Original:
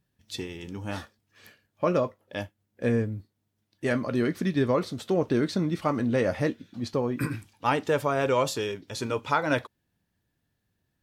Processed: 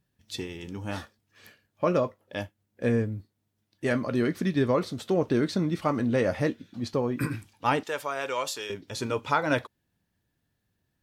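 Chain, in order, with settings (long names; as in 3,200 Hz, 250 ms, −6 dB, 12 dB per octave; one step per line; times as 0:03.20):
0:07.83–0:08.70: high-pass filter 1,200 Hz 6 dB per octave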